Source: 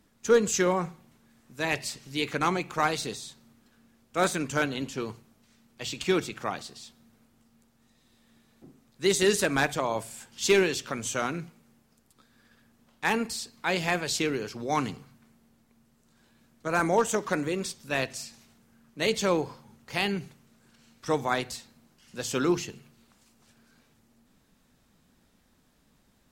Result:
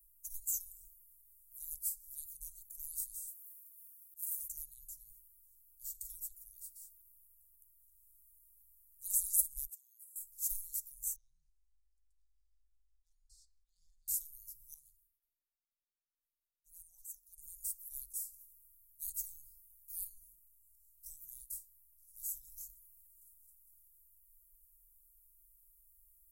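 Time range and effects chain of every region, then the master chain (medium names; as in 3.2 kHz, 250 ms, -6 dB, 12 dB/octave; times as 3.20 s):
3.27–4.47 s: spectral contrast reduction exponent 0.6 + high-pass 91 Hz 6 dB/octave + slow attack 460 ms
9.65–10.16 s: high-pass 1.1 kHz 24 dB/octave + treble shelf 2.6 kHz -10 dB + gate -51 dBFS, range -9 dB
11.16–14.08 s: slow attack 415 ms + low-pass 4.6 kHz 24 dB/octave + compression 2.5:1, threshold -38 dBFS
14.74–17.38 s: tone controls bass -13 dB, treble -13 dB + expander -58 dBFS
20.04–22.68 s: chorus 1.8 Hz, delay 18 ms, depth 6.7 ms + transient shaper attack +5 dB, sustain 0 dB + repeats whose band climbs or falls 153 ms, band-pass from 220 Hz, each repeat 0.7 oct, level -0.5 dB
whole clip: inverse Chebyshev band-stop 210–2700 Hz, stop band 80 dB; bass shelf 390 Hz -11.5 dB; trim +15 dB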